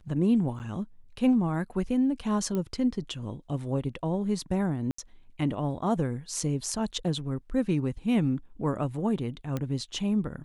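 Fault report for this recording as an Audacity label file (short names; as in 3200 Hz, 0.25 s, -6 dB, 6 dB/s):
0.590000	0.600000	gap 8.8 ms
2.550000	2.550000	pop -20 dBFS
4.910000	4.980000	gap 74 ms
9.570000	9.570000	pop -18 dBFS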